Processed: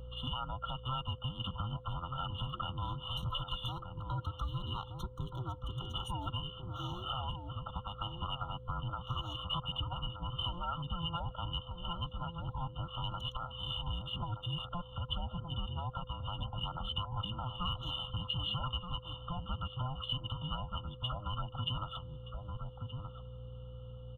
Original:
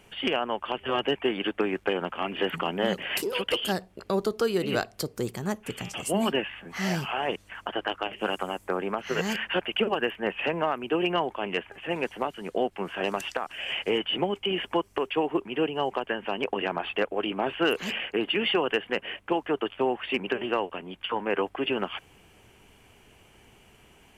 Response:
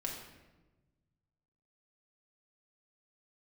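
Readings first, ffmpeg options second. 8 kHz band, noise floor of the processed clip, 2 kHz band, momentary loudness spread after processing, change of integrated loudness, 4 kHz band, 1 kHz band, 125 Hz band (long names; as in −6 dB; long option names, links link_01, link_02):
below −20 dB, −50 dBFS, −22.5 dB, 6 LU, −10.5 dB, −6.0 dB, −9.0 dB, +3.5 dB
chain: -filter_complex "[0:a]afftfilt=real='real(if(between(b,1,1008),(2*floor((b-1)/24)+1)*24-b,b),0)':imag='imag(if(between(b,1,1008),(2*floor((b-1)/24)+1)*24-b,b),0)*if(between(b,1,1008),-1,1)':win_size=2048:overlap=0.75,highshelf=frequency=9300:gain=-9,acrossover=split=480|4100[link_01][link_02][link_03];[link_03]aeval=exprs='val(0)*gte(abs(val(0)),0.00473)':channel_layout=same[link_04];[link_01][link_02][link_04]amix=inputs=3:normalize=0,alimiter=limit=-22dB:level=0:latency=1:release=177,aeval=exprs='val(0)+0.00316*(sin(2*PI*60*n/s)+sin(2*PI*2*60*n/s)/2+sin(2*PI*3*60*n/s)/3+sin(2*PI*4*60*n/s)/4+sin(2*PI*5*60*n/s)/5)':channel_layout=same,firequalizer=gain_entry='entry(130,0);entry(190,-11);entry(310,-22);entry(810,-18);entry(1500,-2);entry(3000,-7);entry(5000,-23);entry(14000,-22)':delay=0.05:min_phase=1,asplit=2[link_05][link_06];[link_06]adelay=1224,volume=-7dB,highshelf=frequency=4000:gain=-27.6[link_07];[link_05][link_07]amix=inputs=2:normalize=0,aeval=exprs='val(0)+0.000891*sin(2*PI*510*n/s)':channel_layout=same,acrossover=split=330[link_08][link_09];[link_08]acompressor=threshold=-49dB:ratio=2.5[link_10];[link_10][link_09]amix=inputs=2:normalize=0,afftfilt=real='re*eq(mod(floor(b*sr/1024/1400),2),0)':imag='im*eq(mod(floor(b*sr/1024/1400),2),0)':win_size=1024:overlap=0.75,volume=7dB"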